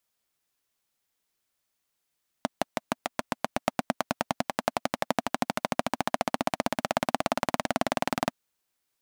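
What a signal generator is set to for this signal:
pulse-train model of a single-cylinder engine, changing speed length 5.87 s, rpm 700, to 2,400, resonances 250/660 Hz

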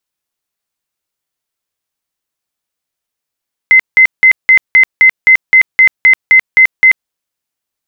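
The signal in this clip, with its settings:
tone bursts 2,060 Hz, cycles 176, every 0.26 s, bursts 13, −1.5 dBFS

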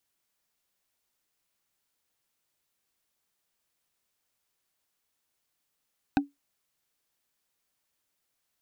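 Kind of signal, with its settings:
struck wood, lowest mode 283 Hz, decay 0.17 s, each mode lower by 3 dB, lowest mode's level −16.5 dB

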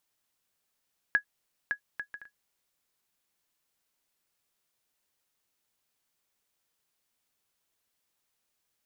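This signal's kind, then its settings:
bouncing ball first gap 0.56 s, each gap 0.51, 1,670 Hz, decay 93 ms −14 dBFS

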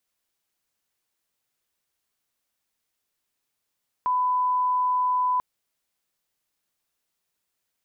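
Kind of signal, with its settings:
line-up tone −20 dBFS 1.34 s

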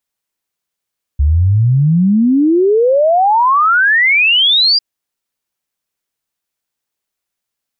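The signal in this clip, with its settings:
exponential sine sweep 68 Hz → 4,900 Hz 3.60 s −7.5 dBFS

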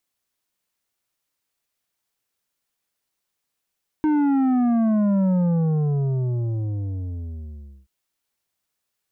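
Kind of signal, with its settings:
bass drop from 310 Hz, over 3.83 s, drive 8.5 dB, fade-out 2.57 s, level −17.5 dB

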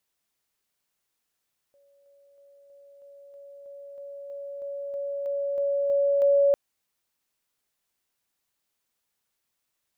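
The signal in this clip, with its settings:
level staircase 563 Hz −58.5 dBFS, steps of 3 dB, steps 15, 0.32 s 0.00 s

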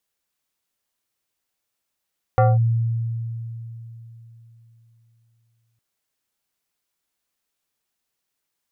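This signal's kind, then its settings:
two-operator FM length 3.41 s, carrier 115 Hz, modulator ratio 5.55, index 1.3, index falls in 0.20 s linear, decay 3.62 s, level −11 dB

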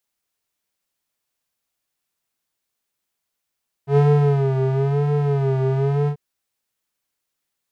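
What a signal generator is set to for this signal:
subtractive patch with vibrato C#3, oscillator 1 square, interval +19 semitones, detune 26 cents, oscillator 2 level −9 dB, sub −29 dB, filter bandpass, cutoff 250 Hz, Q 1.1, filter envelope 0.5 octaves, attack 100 ms, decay 0.49 s, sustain −6 dB, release 0.08 s, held 2.21 s, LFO 1 Hz, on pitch 89 cents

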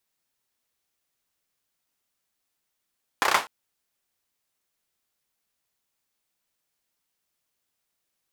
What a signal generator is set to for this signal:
synth clap length 0.25 s, bursts 5, apart 31 ms, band 1,000 Hz, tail 0.25 s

